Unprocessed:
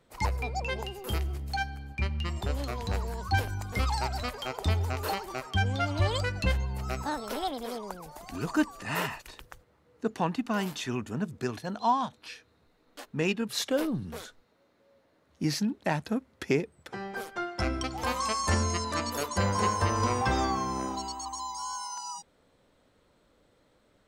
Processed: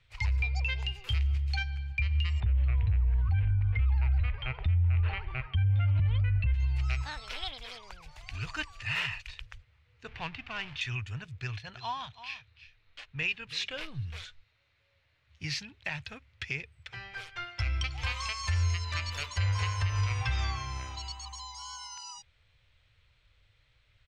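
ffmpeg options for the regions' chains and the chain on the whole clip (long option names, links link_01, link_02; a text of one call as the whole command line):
ffmpeg -i in.wav -filter_complex "[0:a]asettb=1/sr,asplit=3[link_01][link_02][link_03];[link_01]atrim=end=2.404[link_04];[link_02]atrim=start=2.4:end=6.54,asetpts=PTS-STARTPTS,afade=type=in:duration=0.004:curve=qsin,afade=type=out:start_time=4.136:duration=0.004:curve=qsin,lowpass=frequency=2600:width=0.5412,lowpass=frequency=2600:width=1.3066,lowshelf=frequency=390:gain=10.5[link_05];[link_03]atrim=start=6.536[link_06];[link_04][link_05]acrossfade=duration=0.004:curve1=hsin:curve2=qsin[link_07];[link_07][link_06]acrossfade=duration=0.004:curve1=qsin:curve2=hsin,asettb=1/sr,asplit=3[link_08][link_09][link_10];[link_08]atrim=end=10.084[link_11];[link_09]atrim=start=10.08:end=10.81,asetpts=PTS-STARTPTS,afade=type=in:duration=0.004:curve=qsin,afade=type=out:start_time=0.726:duration=0.004:curve=qsin,aeval=exprs='val(0)+0.5*0.01*sgn(val(0))':channel_layout=same,adynamicsmooth=sensitivity=3.5:basefreq=1700[link_12];[link_10]atrim=start=10.806[link_13];[link_11][link_12]acrossfade=duration=0.004:curve1=hsin:curve2=qsin[link_14];[link_14][link_13]acrossfade=duration=0.004:curve1=qsin:curve2=hsin,asettb=1/sr,asplit=3[link_15][link_16][link_17];[link_15]atrim=end=11.334[link_18];[link_16]atrim=start=11.33:end=13.81,asetpts=PTS-STARTPTS,afade=type=in:duration=0.004:curve=qsin,afade=type=out:start_time=2.476:duration=0.004:curve=qsin,highshelf=frequency=7800:gain=-10,aecho=1:1:330:0.188,atrim=end_sample=109368[link_19];[link_17]atrim=start=13.806[link_20];[link_18][link_19]acrossfade=duration=0.004:curve1=hsin:curve2=qsin[link_21];[link_21][link_20]acrossfade=duration=0.004:curve1=qsin:curve2=hsin,firequalizer=gain_entry='entry(110,0);entry(200,-30);entry(490,-23);entry(2400,1);entry(3800,-5);entry(12000,-29)':delay=0.05:min_phase=1,alimiter=level_in=4dB:limit=-24dB:level=0:latency=1:release=141,volume=-4dB,volume=7dB" out.wav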